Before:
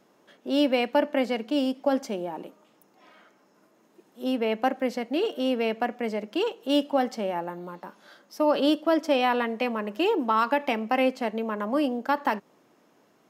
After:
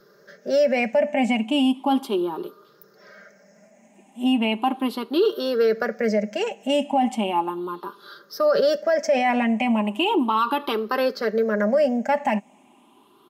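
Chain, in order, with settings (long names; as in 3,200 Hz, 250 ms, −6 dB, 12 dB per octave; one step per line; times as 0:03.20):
rippled gain that drifts along the octave scale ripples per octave 0.59, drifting +0.36 Hz, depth 18 dB
comb filter 5 ms, depth 51%
brickwall limiter −14.5 dBFS, peak gain reduction 10.5 dB
level +2.5 dB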